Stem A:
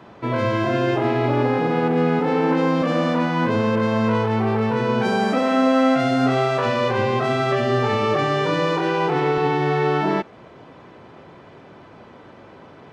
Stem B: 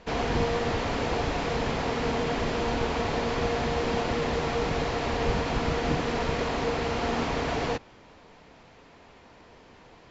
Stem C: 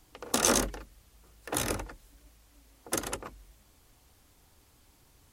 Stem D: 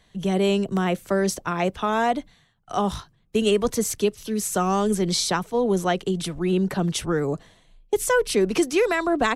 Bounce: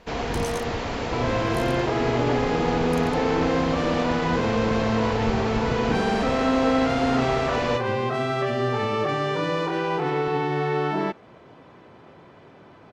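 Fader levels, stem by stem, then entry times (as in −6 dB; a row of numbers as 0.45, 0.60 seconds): −4.5 dB, 0.0 dB, −13.0 dB, muted; 0.90 s, 0.00 s, 0.00 s, muted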